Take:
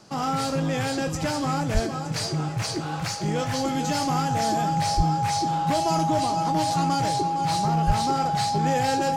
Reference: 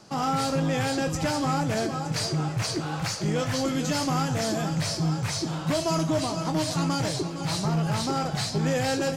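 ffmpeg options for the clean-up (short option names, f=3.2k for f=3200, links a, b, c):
-filter_complex "[0:a]bandreject=f=820:w=30,asplit=3[a][b][c];[a]afade=t=out:st=1.73:d=0.02[d];[b]highpass=f=140:w=0.5412,highpass=f=140:w=1.3066,afade=t=in:st=1.73:d=0.02,afade=t=out:st=1.85:d=0.02[e];[c]afade=t=in:st=1.85:d=0.02[f];[d][e][f]amix=inputs=3:normalize=0,asplit=3[g][h][i];[g]afade=t=out:st=4.96:d=0.02[j];[h]highpass=f=140:w=0.5412,highpass=f=140:w=1.3066,afade=t=in:st=4.96:d=0.02,afade=t=out:st=5.08:d=0.02[k];[i]afade=t=in:st=5.08:d=0.02[l];[j][k][l]amix=inputs=3:normalize=0,asplit=3[m][n][o];[m]afade=t=out:st=7.86:d=0.02[p];[n]highpass=f=140:w=0.5412,highpass=f=140:w=1.3066,afade=t=in:st=7.86:d=0.02,afade=t=out:st=7.98:d=0.02[q];[o]afade=t=in:st=7.98:d=0.02[r];[p][q][r]amix=inputs=3:normalize=0"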